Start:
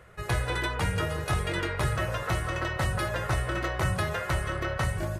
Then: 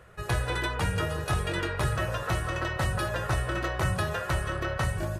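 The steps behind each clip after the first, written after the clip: notch 2100 Hz, Q 18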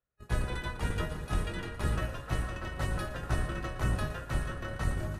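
octaver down 1 oct, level +3 dB; multi-head echo 0.116 s, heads first and third, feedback 63%, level -13 dB; expander -22 dBFS; gain -6 dB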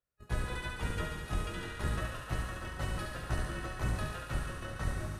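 thinning echo 70 ms, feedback 82%, high-pass 860 Hz, level -4.5 dB; gain -3.5 dB

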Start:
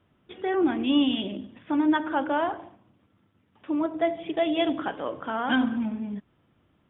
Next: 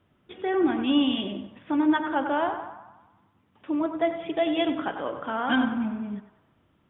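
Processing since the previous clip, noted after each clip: narrowing echo 96 ms, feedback 60%, band-pass 1100 Hz, level -7.5 dB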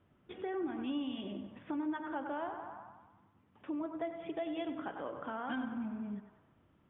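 compressor 2.5:1, threshold -37 dBFS, peak gain reduction 13 dB; air absorption 260 m; gain -2.5 dB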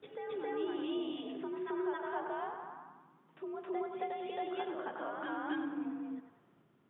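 reverse echo 0.269 s -3.5 dB; frequency shift +61 Hz; gain -1 dB

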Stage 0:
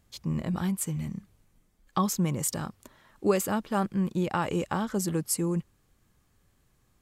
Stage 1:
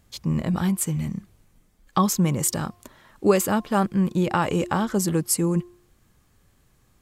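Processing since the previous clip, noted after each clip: de-hum 353 Hz, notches 3; gain +6 dB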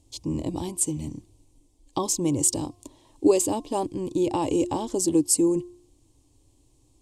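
EQ curve 120 Hz 0 dB, 200 Hz -17 dB, 290 Hz +10 dB, 410 Hz -1 dB, 670 Hz -4 dB, 990 Hz -3 dB, 1400 Hz -28 dB, 2700 Hz -5 dB, 8900 Hz +4 dB, 15000 Hz -17 dB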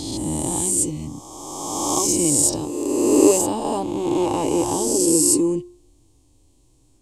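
spectral swells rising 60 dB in 2.03 s; flange 0.49 Hz, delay 2.4 ms, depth 5.9 ms, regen -70%; gain +4.5 dB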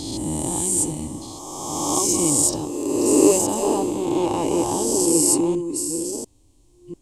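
reverse delay 0.694 s, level -8 dB; gain -1 dB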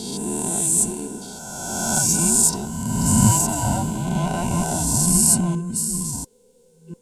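band inversion scrambler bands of 500 Hz; high shelf 10000 Hz +9.5 dB; gain -1 dB

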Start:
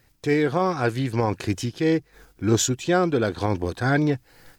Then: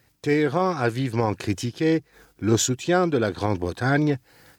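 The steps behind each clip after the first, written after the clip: HPF 69 Hz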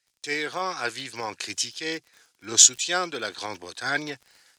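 weighting filter ITU-R 468; crackle 34/s -31 dBFS; three-band expander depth 40%; gain -4.5 dB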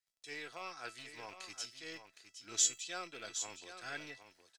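rattling part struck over -43 dBFS, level -24 dBFS; resonator 660 Hz, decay 0.22 s, harmonics all, mix 80%; echo 0.764 s -10 dB; gain -5 dB

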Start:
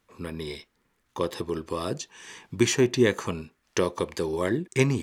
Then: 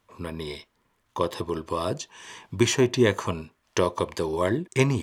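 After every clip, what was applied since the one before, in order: thirty-one-band EQ 100 Hz +7 dB, 630 Hz +6 dB, 1000 Hz +7 dB, 3150 Hz +3 dB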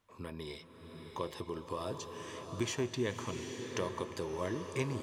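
compressor 1.5:1, threshold -35 dBFS, peak gain reduction 7.5 dB; bloom reverb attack 0.8 s, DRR 5 dB; gain -7.5 dB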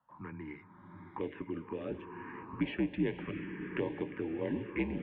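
mistuned SSB -67 Hz 190–2700 Hz; envelope phaser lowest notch 390 Hz, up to 1300 Hz, full sweep at -33 dBFS; gain +4 dB

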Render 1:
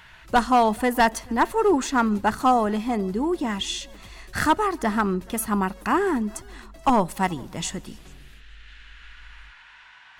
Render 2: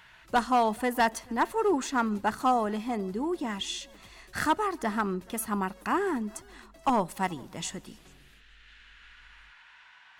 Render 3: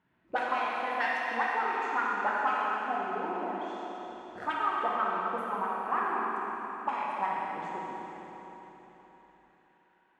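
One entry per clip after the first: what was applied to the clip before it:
low shelf 98 Hz -9 dB; gain -5.5 dB
rattling part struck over -48 dBFS, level -32 dBFS; auto-wah 260–2200 Hz, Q 2.7, up, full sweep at -20.5 dBFS; reverb RT60 4.0 s, pre-delay 14 ms, DRR -5.5 dB

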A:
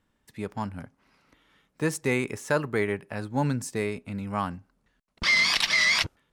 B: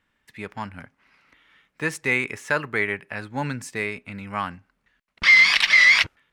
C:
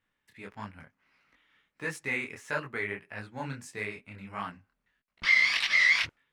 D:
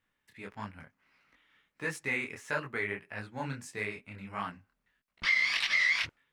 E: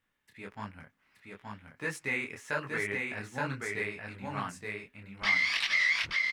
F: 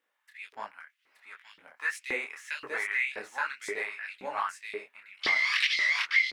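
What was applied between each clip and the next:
bell 2100 Hz +12.5 dB 1.8 oct; gain -3.5 dB
detuned doubles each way 54 cents; gain -5.5 dB
compressor 2:1, threshold -27 dBFS, peak gain reduction 5.5 dB
echo 0.874 s -3 dB
LFO high-pass saw up 1.9 Hz 370–3900 Hz

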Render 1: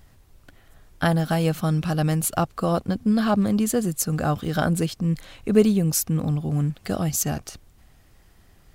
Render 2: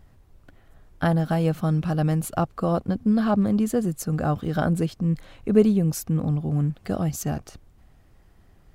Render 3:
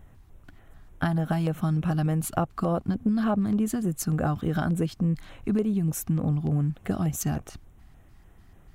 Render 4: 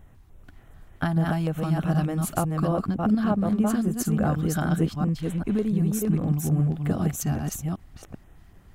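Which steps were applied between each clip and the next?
high shelf 2000 Hz -10 dB
compressor 6:1, threshold -23 dBFS, peak gain reduction 11.5 dB; LFO notch square 3.4 Hz 510–4700 Hz; gain +2 dB
reverse delay 0.388 s, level -2.5 dB

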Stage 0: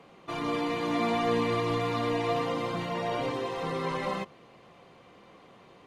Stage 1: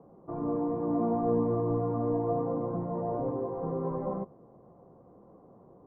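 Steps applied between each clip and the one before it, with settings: Bessel low-pass 620 Hz, order 6; gain +2 dB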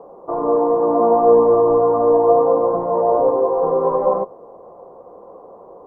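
graphic EQ 125/250/500/1000 Hz -11/-4/+11/+10 dB; gain +7 dB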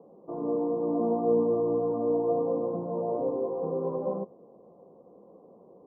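band-pass 200 Hz, Q 1.7; gain -2 dB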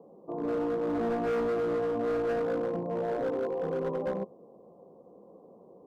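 hard clip -26.5 dBFS, distortion -11 dB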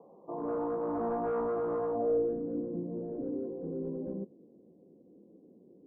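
low-pass sweep 1000 Hz -> 300 Hz, 1.85–2.39; gain -5 dB

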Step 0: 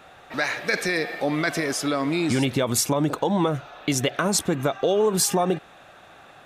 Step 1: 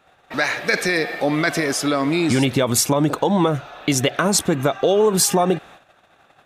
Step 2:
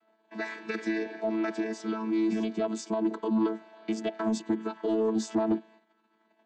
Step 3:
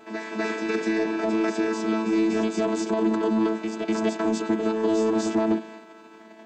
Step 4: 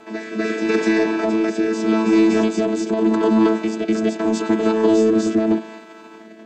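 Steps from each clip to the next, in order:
gate -46 dBFS, range -14 dB; gain +4.5 dB
chord vocoder bare fifth, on A3; soft clip -9.5 dBFS, distortion -20 dB; gain -8.5 dB
per-bin compression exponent 0.6; reverse echo 0.248 s -4.5 dB; gain +2 dB
rotary speaker horn 0.8 Hz; gain +8 dB

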